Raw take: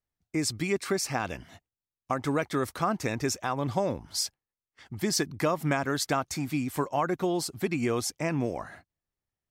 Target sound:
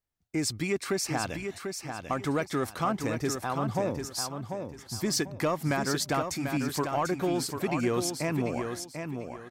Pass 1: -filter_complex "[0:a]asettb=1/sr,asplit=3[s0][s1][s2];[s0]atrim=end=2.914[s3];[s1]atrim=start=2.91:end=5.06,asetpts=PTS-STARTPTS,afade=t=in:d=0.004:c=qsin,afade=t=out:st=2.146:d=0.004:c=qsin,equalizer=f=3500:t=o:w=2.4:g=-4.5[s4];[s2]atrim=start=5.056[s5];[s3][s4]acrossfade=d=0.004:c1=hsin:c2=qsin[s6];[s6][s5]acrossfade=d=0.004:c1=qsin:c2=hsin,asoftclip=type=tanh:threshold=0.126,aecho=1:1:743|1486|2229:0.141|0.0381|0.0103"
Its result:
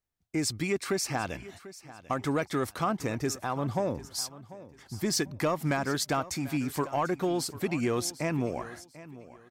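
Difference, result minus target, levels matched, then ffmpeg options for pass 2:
echo-to-direct -10.5 dB
-filter_complex "[0:a]asettb=1/sr,asplit=3[s0][s1][s2];[s0]atrim=end=2.914[s3];[s1]atrim=start=2.91:end=5.06,asetpts=PTS-STARTPTS,afade=t=in:d=0.004:c=qsin,afade=t=out:st=2.146:d=0.004:c=qsin,equalizer=f=3500:t=o:w=2.4:g=-4.5[s4];[s2]atrim=start=5.056[s5];[s3][s4]acrossfade=d=0.004:c1=hsin:c2=qsin[s6];[s6][s5]acrossfade=d=0.004:c1=qsin:c2=hsin,asoftclip=type=tanh:threshold=0.126,aecho=1:1:743|1486|2229:0.473|0.128|0.0345"

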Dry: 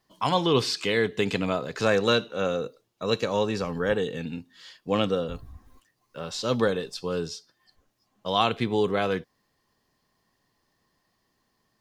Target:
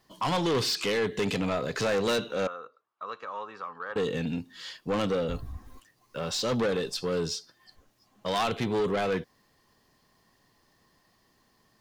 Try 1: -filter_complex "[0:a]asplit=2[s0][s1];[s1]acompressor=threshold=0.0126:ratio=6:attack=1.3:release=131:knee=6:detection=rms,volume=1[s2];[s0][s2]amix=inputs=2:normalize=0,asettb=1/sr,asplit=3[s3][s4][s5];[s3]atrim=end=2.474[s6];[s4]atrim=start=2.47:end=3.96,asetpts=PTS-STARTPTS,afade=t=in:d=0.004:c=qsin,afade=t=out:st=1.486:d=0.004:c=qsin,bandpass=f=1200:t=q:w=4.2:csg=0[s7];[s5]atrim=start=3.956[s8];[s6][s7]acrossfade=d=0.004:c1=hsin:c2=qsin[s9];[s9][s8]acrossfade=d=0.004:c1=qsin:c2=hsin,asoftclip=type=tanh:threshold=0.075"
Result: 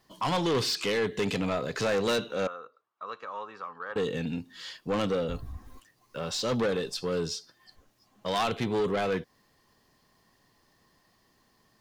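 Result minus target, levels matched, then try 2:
compression: peak gain reduction +6.5 dB
-filter_complex "[0:a]asplit=2[s0][s1];[s1]acompressor=threshold=0.0299:ratio=6:attack=1.3:release=131:knee=6:detection=rms,volume=1[s2];[s0][s2]amix=inputs=2:normalize=0,asettb=1/sr,asplit=3[s3][s4][s5];[s3]atrim=end=2.474[s6];[s4]atrim=start=2.47:end=3.96,asetpts=PTS-STARTPTS,afade=t=in:d=0.004:c=qsin,afade=t=out:st=1.486:d=0.004:c=qsin,bandpass=f=1200:t=q:w=4.2:csg=0[s7];[s5]atrim=start=3.956[s8];[s6][s7]acrossfade=d=0.004:c1=hsin:c2=qsin[s9];[s9][s8]acrossfade=d=0.004:c1=qsin:c2=hsin,asoftclip=type=tanh:threshold=0.075"

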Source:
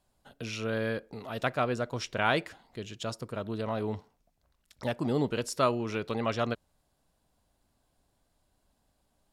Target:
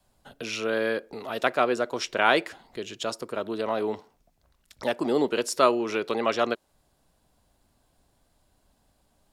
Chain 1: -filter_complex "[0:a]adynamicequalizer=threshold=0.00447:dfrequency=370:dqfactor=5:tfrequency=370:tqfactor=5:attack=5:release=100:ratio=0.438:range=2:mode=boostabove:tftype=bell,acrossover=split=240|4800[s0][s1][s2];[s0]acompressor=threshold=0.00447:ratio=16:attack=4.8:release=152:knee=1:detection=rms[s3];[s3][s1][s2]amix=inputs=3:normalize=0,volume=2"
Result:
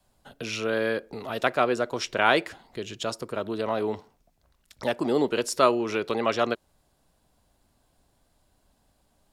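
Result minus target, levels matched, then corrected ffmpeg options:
compression: peak gain reduction -8.5 dB
-filter_complex "[0:a]adynamicequalizer=threshold=0.00447:dfrequency=370:dqfactor=5:tfrequency=370:tqfactor=5:attack=5:release=100:ratio=0.438:range=2:mode=boostabove:tftype=bell,acrossover=split=240|4800[s0][s1][s2];[s0]acompressor=threshold=0.00158:ratio=16:attack=4.8:release=152:knee=1:detection=rms[s3];[s3][s1][s2]amix=inputs=3:normalize=0,volume=2"

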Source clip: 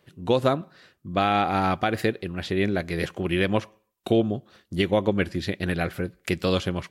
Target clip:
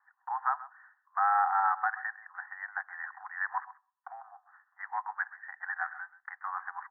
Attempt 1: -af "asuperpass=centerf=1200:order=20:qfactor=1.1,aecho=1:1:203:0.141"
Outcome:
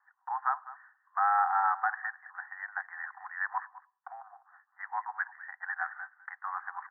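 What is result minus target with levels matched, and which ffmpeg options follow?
echo 73 ms late
-af "asuperpass=centerf=1200:order=20:qfactor=1.1,aecho=1:1:130:0.141"

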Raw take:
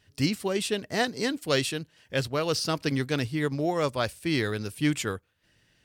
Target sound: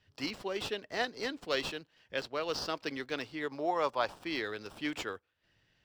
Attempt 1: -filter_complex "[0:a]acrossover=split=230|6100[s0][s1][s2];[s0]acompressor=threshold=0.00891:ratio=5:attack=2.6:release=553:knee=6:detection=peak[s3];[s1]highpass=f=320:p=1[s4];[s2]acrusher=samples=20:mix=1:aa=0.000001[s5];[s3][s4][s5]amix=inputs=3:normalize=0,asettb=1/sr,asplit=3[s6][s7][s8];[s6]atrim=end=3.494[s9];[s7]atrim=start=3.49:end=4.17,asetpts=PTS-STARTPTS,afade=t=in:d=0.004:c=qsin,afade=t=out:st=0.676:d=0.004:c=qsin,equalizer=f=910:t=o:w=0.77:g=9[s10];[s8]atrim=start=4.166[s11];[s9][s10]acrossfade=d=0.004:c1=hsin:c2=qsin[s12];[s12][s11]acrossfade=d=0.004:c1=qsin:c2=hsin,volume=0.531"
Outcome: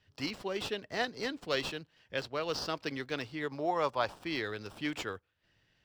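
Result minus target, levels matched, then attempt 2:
compression: peak gain reduction -8 dB
-filter_complex "[0:a]acrossover=split=230|6100[s0][s1][s2];[s0]acompressor=threshold=0.00282:ratio=5:attack=2.6:release=553:knee=6:detection=peak[s3];[s1]highpass=f=320:p=1[s4];[s2]acrusher=samples=20:mix=1:aa=0.000001[s5];[s3][s4][s5]amix=inputs=3:normalize=0,asettb=1/sr,asplit=3[s6][s7][s8];[s6]atrim=end=3.494[s9];[s7]atrim=start=3.49:end=4.17,asetpts=PTS-STARTPTS,afade=t=in:d=0.004:c=qsin,afade=t=out:st=0.676:d=0.004:c=qsin,equalizer=f=910:t=o:w=0.77:g=9[s10];[s8]atrim=start=4.166[s11];[s9][s10]acrossfade=d=0.004:c1=hsin:c2=qsin[s12];[s12][s11]acrossfade=d=0.004:c1=qsin:c2=hsin,volume=0.531"

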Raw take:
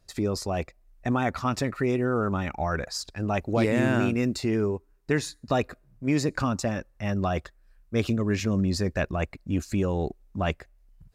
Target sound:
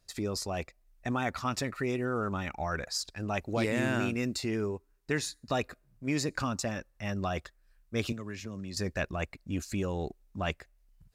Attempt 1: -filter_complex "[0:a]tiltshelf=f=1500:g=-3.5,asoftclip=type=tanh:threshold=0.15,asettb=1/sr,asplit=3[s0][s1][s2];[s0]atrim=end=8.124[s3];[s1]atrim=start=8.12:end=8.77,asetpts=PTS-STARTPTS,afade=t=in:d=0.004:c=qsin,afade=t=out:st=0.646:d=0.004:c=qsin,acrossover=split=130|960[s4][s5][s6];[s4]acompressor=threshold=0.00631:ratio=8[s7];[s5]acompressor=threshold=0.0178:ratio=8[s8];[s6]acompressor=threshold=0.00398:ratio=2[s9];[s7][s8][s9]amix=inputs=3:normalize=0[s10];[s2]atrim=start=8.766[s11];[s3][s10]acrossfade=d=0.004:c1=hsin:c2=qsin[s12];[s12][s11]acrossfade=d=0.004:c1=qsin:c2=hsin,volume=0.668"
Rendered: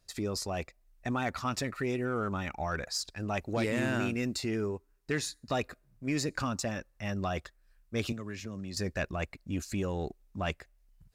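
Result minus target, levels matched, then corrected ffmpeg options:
saturation: distortion +21 dB
-filter_complex "[0:a]tiltshelf=f=1500:g=-3.5,asoftclip=type=tanh:threshold=0.562,asettb=1/sr,asplit=3[s0][s1][s2];[s0]atrim=end=8.124[s3];[s1]atrim=start=8.12:end=8.77,asetpts=PTS-STARTPTS,afade=t=in:d=0.004:c=qsin,afade=t=out:st=0.646:d=0.004:c=qsin,acrossover=split=130|960[s4][s5][s6];[s4]acompressor=threshold=0.00631:ratio=8[s7];[s5]acompressor=threshold=0.0178:ratio=8[s8];[s6]acompressor=threshold=0.00398:ratio=2[s9];[s7][s8][s9]amix=inputs=3:normalize=0[s10];[s2]atrim=start=8.766[s11];[s3][s10]acrossfade=d=0.004:c1=hsin:c2=qsin[s12];[s12][s11]acrossfade=d=0.004:c1=qsin:c2=hsin,volume=0.668"

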